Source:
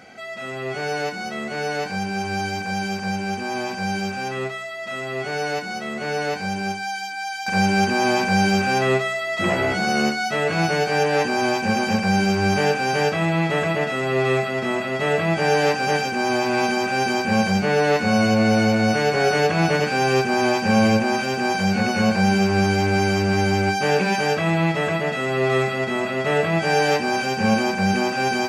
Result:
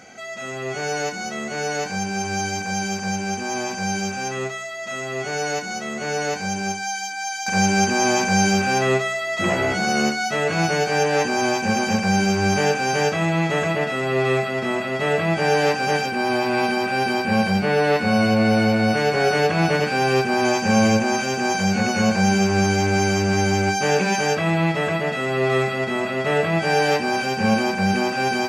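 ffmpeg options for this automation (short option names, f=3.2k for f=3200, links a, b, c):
-af "asetnsamples=n=441:p=0,asendcmd='8.53 equalizer g 7.5;13.74 equalizer g 0;16.06 equalizer g -9.5;18.97 equalizer g -2.5;20.45 equalizer g 9;24.35 equalizer g -1',equalizer=f=6.5k:t=o:w=0.26:g=14"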